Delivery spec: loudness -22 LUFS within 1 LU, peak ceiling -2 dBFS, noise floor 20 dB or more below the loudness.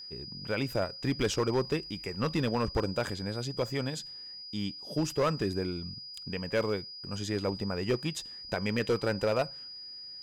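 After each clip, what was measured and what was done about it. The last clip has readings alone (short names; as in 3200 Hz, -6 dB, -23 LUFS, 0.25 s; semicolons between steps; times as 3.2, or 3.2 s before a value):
clipped 1.2%; flat tops at -21.5 dBFS; steady tone 4900 Hz; tone level -42 dBFS; loudness -32.5 LUFS; peak -21.5 dBFS; loudness target -22.0 LUFS
-> clip repair -21.5 dBFS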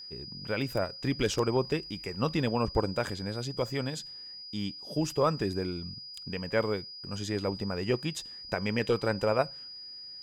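clipped 0.0%; steady tone 4900 Hz; tone level -42 dBFS
-> notch 4900 Hz, Q 30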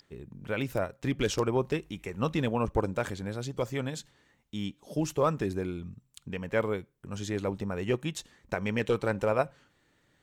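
steady tone none; loudness -31.5 LUFS; peak -12.5 dBFS; loudness target -22.0 LUFS
-> gain +9.5 dB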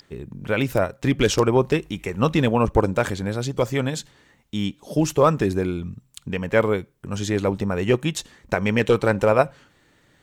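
loudness -22.0 LUFS; peak -3.0 dBFS; noise floor -60 dBFS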